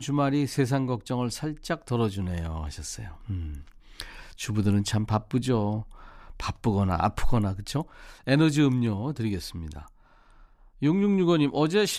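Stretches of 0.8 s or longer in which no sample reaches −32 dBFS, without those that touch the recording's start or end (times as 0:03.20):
0:09.79–0:10.82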